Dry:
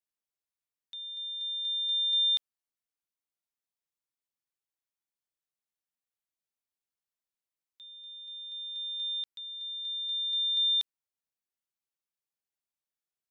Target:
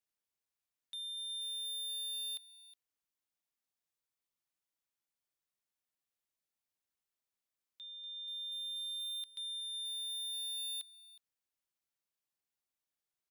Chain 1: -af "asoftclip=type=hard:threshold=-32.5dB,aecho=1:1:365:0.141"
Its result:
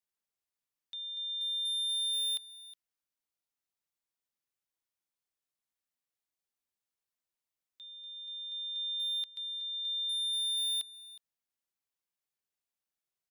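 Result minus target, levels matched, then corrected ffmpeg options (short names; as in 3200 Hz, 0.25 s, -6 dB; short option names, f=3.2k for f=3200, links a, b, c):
hard clip: distortion -4 dB
-af "asoftclip=type=hard:threshold=-41dB,aecho=1:1:365:0.141"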